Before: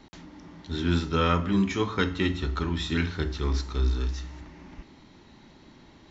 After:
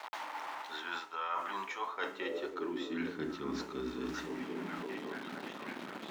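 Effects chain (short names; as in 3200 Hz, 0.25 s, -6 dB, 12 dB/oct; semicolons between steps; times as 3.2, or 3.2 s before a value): bit-crush 8-bit; dynamic EQ 6800 Hz, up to +6 dB, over -56 dBFS, Q 1.7; on a send: delay with a stepping band-pass 0.54 s, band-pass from 290 Hz, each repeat 0.7 oct, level -8.5 dB; on the sum: high-pass sweep 860 Hz -> 200 Hz, 1.75–3.23; tone controls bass -9 dB, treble -15 dB; reverse; compressor 5:1, threshold -46 dBFS, peak gain reduction 23.5 dB; reverse; gain +8.5 dB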